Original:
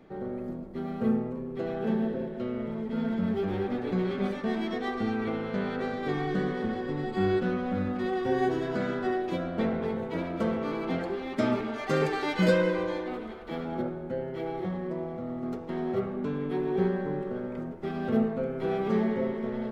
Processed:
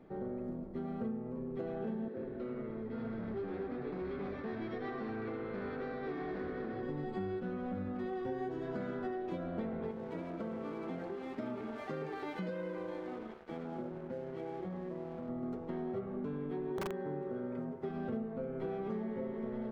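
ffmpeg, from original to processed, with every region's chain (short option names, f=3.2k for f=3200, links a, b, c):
-filter_complex "[0:a]asettb=1/sr,asplit=3[a][b][c];[a]atrim=end=2.084[d];[b]atrim=start=2.08:end=6.83,asetpts=PTS-STARTPTS,afade=t=in:d=0.004:c=qsin,afade=t=out:st=4.746:d=0.004:c=qsin,asoftclip=type=hard:threshold=-26dB,highpass=310,equalizer=f=630:t=q:w=4:g=-5,equalizer=f=920:t=q:w=4:g=-6,equalizer=f=3.1k:t=q:w=4:g=-7,lowpass=f=4.9k:w=0.5412,lowpass=f=4.9k:w=1.3066,asplit=5[e][f][g][h][i];[f]adelay=82,afreqshift=-110,volume=-9dB[j];[g]adelay=164,afreqshift=-220,volume=-18.1dB[k];[h]adelay=246,afreqshift=-330,volume=-27.2dB[l];[i]adelay=328,afreqshift=-440,volume=-36.4dB[m];[e][j][k][l][m]amix=inputs=5:normalize=0,atrim=end_sample=209475[n];[c]atrim=start=6.826[o];[d][n]acrossfade=d=0.004:c1=hsin:c2=qsin[p];[p][o]acrossfade=d=0.004:c1=qsin:c2=hsin,asettb=1/sr,asplit=3[q][r][s];[q]atrim=end=9.914[t];[r]atrim=start=9.91:end=15.29,asetpts=PTS-STARTPTS,afade=t=in:d=0.004:c=qsin,afade=t=out:st=5.376:d=0.004:c=qsin,highpass=110,lowpass=5.5k,aeval=exprs='sgn(val(0))*max(abs(val(0))-0.00501,0)':c=same,acompressor=threshold=-35dB:ratio=2:attack=3.2:release=140:knee=1:detection=peak[u];[s]atrim=start=15.286[v];[t][u]acrossfade=d=0.004:c1=hsin:c2=qsin[w];[w][v]acrossfade=d=0.004:c1=qsin:c2=hsin,asettb=1/sr,asplit=3[x][y][z];[x]atrim=end=16.704[aa];[y]atrim=start=16.7:end=17.89,asetpts=PTS-STARTPTS,afade=t=in:d=0.004:c=qsin,afade=t=out:st=1.186:d=0.004:c=qsin,highpass=f=120:p=1,aecho=1:1:7.5:0.57,atrim=end_sample=52479,aeval=exprs='(mod(7.94*val(0)+1,2)-1)/7.94':c=same[ab];[z]atrim=start=17.886[ac];[aa][ab]acrossfade=d=0.004:c1=hsin:c2=qsin[ad];[ad][ac]acrossfade=d=0.004:c1=qsin:c2=hsin,highshelf=f=2.1k:g=-10,acompressor=threshold=-33dB:ratio=6,volume=-2.5dB"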